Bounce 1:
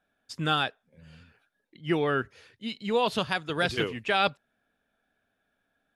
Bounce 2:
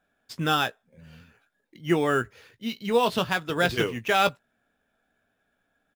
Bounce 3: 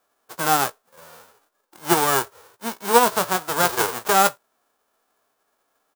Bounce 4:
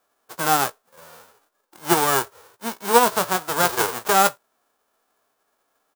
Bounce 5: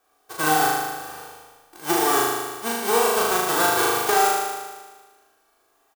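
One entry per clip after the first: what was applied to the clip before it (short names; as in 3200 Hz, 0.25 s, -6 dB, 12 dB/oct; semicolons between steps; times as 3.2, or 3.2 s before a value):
in parallel at -8 dB: sample-rate reducer 8700 Hz, jitter 0%; on the sum: doubler 17 ms -11 dB
spectral whitening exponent 0.1; band shelf 700 Hz +13 dB 2.5 oct; gain -1 dB
nothing audible
comb 2.6 ms, depth 55%; compressor, threshold -20 dBFS, peak gain reduction 11 dB; on a send: flutter echo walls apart 6.6 m, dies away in 1.4 s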